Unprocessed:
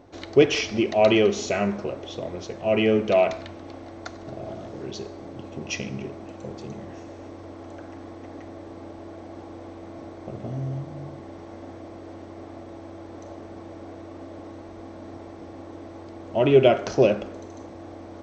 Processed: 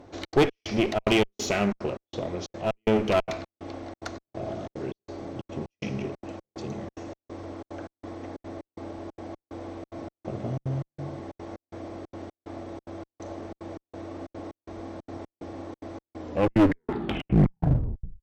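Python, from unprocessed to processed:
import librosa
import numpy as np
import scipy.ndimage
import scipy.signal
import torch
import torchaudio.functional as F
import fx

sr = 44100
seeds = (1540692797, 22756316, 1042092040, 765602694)

y = fx.tape_stop_end(x, sr, length_s=2.11)
y = fx.dynamic_eq(y, sr, hz=580.0, q=1.6, threshold_db=-32.0, ratio=4.0, max_db=-3)
y = fx.step_gate(y, sr, bpm=183, pattern='xxx.xx..x', floor_db=-60.0, edge_ms=4.5)
y = fx.clip_asym(y, sr, top_db=-28.5, bottom_db=-11.0)
y = F.gain(torch.from_numpy(y), 2.0).numpy()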